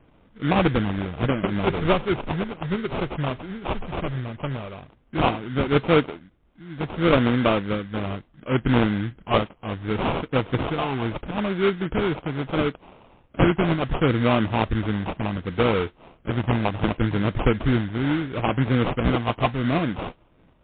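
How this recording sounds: phasing stages 12, 0.71 Hz, lowest notch 530–1700 Hz; aliases and images of a low sample rate 1.8 kHz, jitter 20%; MP3

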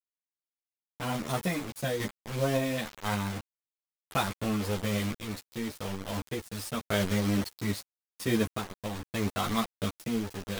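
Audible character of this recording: a quantiser's noise floor 6-bit, dither none; random-step tremolo; a shimmering, thickened sound

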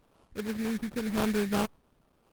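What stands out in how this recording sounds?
a quantiser's noise floor 10-bit, dither none; phasing stages 4, 0.89 Hz, lowest notch 730–1900 Hz; aliases and images of a low sample rate 2 kHz, jitter 20%; Opus

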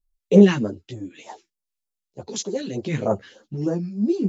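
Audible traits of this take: phasing stages 2, 3.3 Hz, lowest notch 560–2500 Hz; tremolo triangle 0.7 Hz, depth 75%; a shimmering, thickened sound

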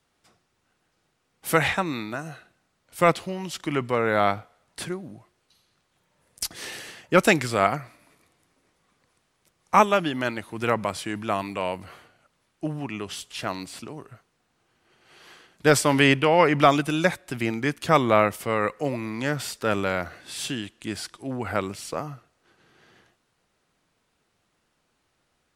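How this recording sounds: noise floor -72 dBFS; spectral tilt -4.5 dB/octave

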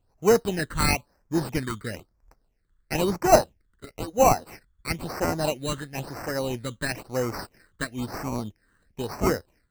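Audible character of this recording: aliases and images of a low sample rate 3.4 kHz, jitter 0%; phasing stages 8, 1 Hz, lowest notch 700–3600 Hz

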